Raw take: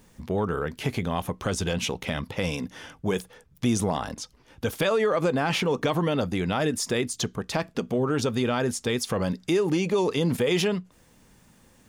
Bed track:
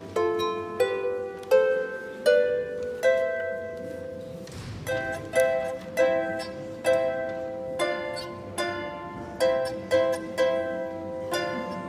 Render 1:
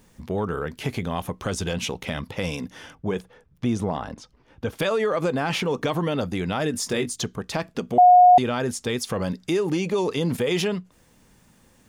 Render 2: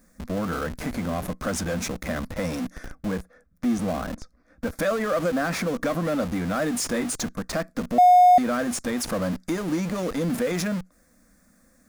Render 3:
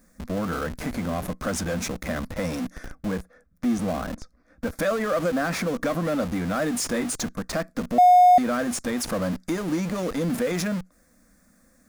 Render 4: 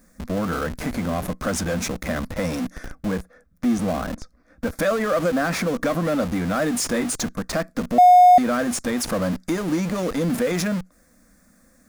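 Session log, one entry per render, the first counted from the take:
2.95–4.79 s: low-pass 2 kHz 6 dB/octave; 6.72–7.16 s: doubling 21 ms -7 dB; 7.98–8.38 s: bleep 722 Hz -8.5 dBFS
static phaser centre 600 Hz, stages 8; in parallel at -8 dB: Schmitt trigger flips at -37.5 dBFS
no audible change
trim +3 dB

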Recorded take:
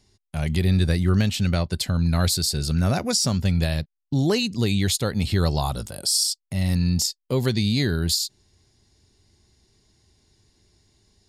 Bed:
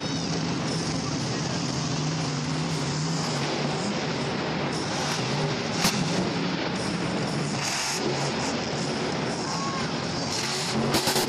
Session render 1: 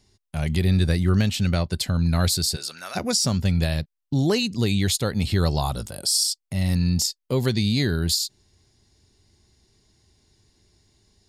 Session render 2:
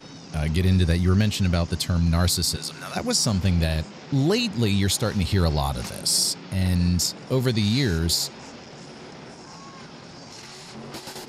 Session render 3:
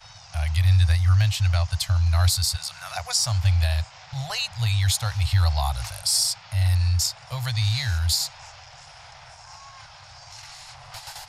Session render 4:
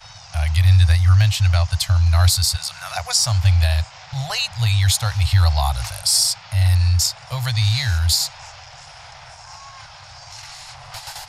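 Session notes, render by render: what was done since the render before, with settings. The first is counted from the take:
2.55–2.95 s: high-pass 550 Hz -> 1.4 kHz
add bed -13.5 dB
Chebyshev band-stop 110–710 Hz, order 3; bass shelf 100 Hz +7.5 dB
trim +5 dB

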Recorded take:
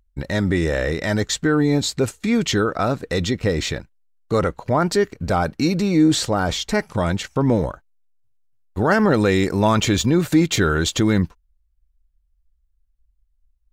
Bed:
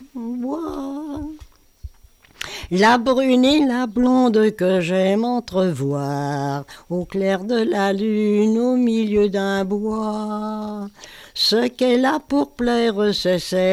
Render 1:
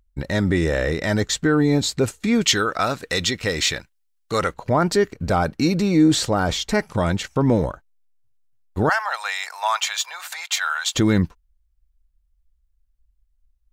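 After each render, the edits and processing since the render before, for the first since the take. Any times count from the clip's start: 2.42–4.54 s: tilt shelf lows -7 dB, about 910 Hz; 8.89–10.95 s: steep high-pass 730 Hz 48 dB/octave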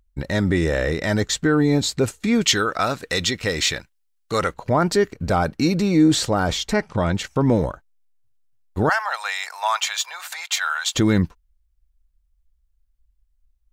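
6.73–7.15 s: distance through air 77 m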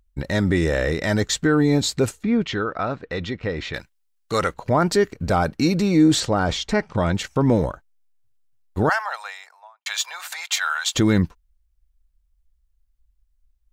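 2.23–3.74 s: tape spacing loss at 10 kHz 36 dB; 6.20–6.95 s: distance through air 52 m; 8.79–9.86 s: studio fade out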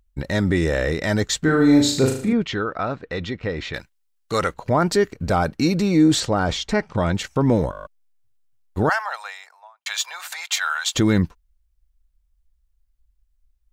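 1.43–2.33 s: flutter echo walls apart 6.5 m, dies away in 0.55 s; 7.71 s: stutter in place 0.02 s, 8 plays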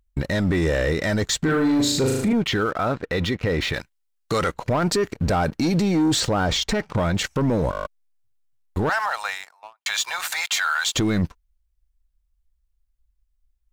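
waveshaping leveller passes 2; peak limiter -15 dBFS, peak gain reduction 10 dB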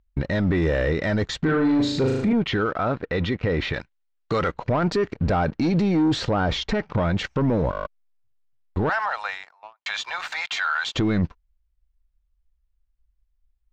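distance through air 190 m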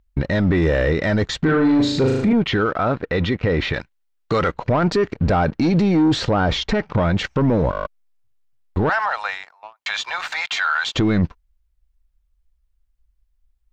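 trim +4 dB

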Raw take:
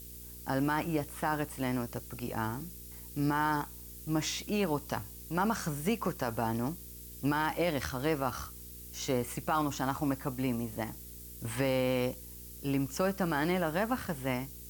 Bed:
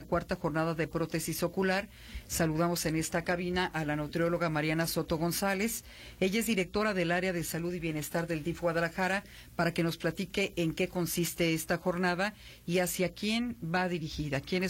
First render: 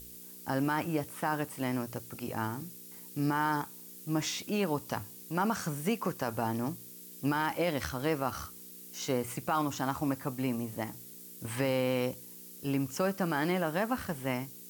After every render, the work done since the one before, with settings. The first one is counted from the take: de-hum 60 Hz, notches 2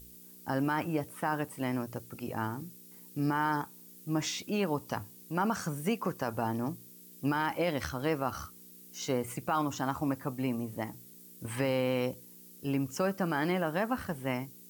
noise reduction 6 dB, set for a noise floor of -49 dBFS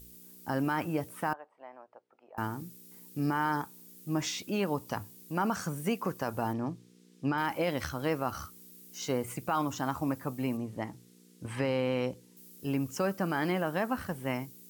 1.33–2.38 s: ladder band-pass 860 Hz, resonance 40%; 6.53–7.38 s: distance through air 100 m; 10.57–12.37 s: distance through air 54 m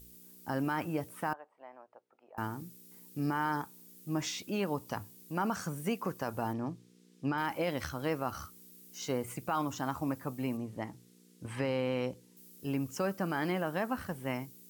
trim -2.5 dB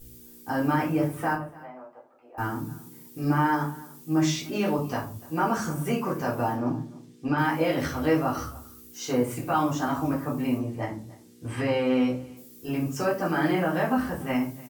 delay 293 ms -21.5 dB; simulated room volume 230 m³, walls furnished, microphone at 3.7 m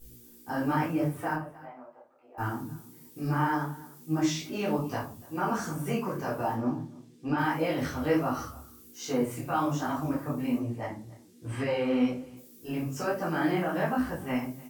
detune thickener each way 42 cents

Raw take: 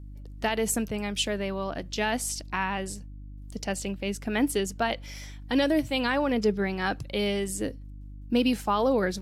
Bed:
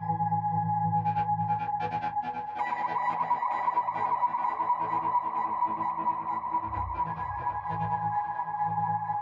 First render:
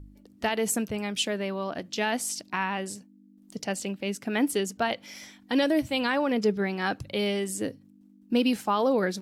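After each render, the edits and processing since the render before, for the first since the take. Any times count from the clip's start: de-hum 50 Hz, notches 3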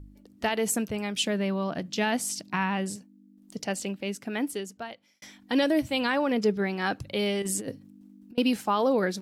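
1.23–2.96 s: peaking EQ 160 Hz +9.5 dB; 3.87–5.22 s: fade out; 7.42–8.38 s: compressor with a negative ratio -33 dBFS, ratio -0.5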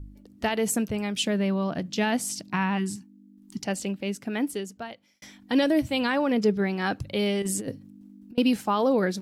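2.78–3.64 s: spectral selection erased 390–780 Hz; bass shelf 230 Hz +6 dB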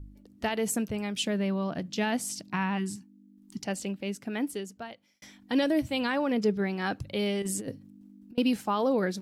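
trim -3.5 dB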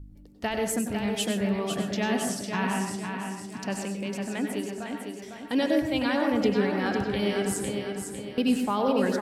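feedback delay 503 ms, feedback 45%, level -6 dB; plate-style reverb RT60 0.54 s, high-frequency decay 0.45×, pre-delay 85 ms, DRR 3.5 dB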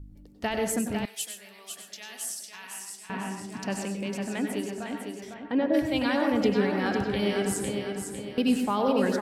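1.05–3.10 s: differentiator; 5.33–5.73 s: low-pass 3.1 kHz -> 1.2 kHz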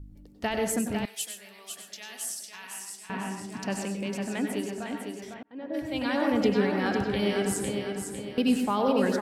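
5.43–6.30 s: fade in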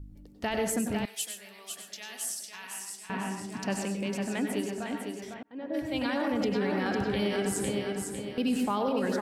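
peak limiter -20.5 dBFS, peak gain reduction 8.5 dB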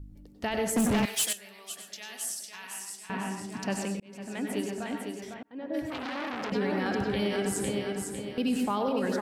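0.76–1.33 s: waveshaping leveller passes 3; 4.00–4.59 s: fade in; 5.90–6.52 s: transformer saturation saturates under 1.7 kHz

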